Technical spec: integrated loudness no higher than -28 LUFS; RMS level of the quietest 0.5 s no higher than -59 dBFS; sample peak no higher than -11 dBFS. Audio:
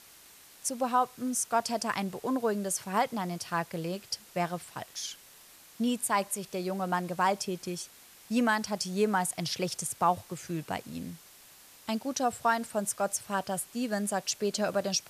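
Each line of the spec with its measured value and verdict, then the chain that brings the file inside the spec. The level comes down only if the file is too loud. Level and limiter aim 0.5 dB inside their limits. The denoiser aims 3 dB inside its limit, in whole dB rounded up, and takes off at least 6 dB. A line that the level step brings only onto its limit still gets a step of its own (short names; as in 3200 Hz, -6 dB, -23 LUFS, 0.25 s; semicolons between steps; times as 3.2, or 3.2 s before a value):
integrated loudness -31.5 LUFS: OK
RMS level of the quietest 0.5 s -55 dBFS: fail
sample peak -14.0 dBFS: OK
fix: denoiser 7 dB, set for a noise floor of -55 dBFS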